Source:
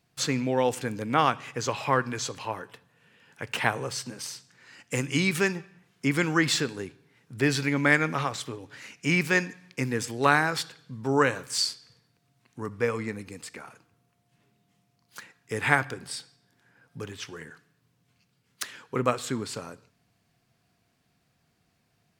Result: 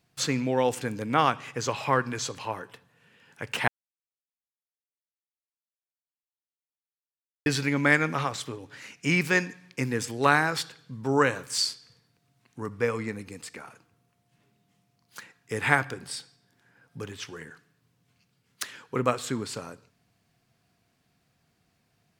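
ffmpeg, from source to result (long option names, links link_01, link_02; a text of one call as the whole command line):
ffmpeg -i in.wav -filter_complex "[0:a]asplit=3[link_01][link_02][link_03];[link_01]atrim=end=3.68,asetpts=PTS-STARTPTS,afade=type=out:start_time=3.676:duration=0.004:curve=hsin[link_04];[link_02]atrim=start=3.68:end=7.46,asetpts=PTS-STARTPTS,volume=0[link_05];[link_03]atrim=start=7.46,asetpts=PTS-STARTPTS,afade=type=in:duration=0.004:curve=hsin[link_06];[link_04][link_05][link_06]concat=n=3:v=0:a=1" out.wav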